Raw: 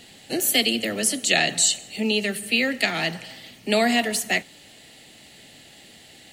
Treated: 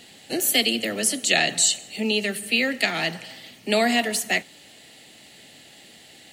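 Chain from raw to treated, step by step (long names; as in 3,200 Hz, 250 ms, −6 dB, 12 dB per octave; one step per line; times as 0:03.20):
low-shelf EQ 81 Hz −10.5 dB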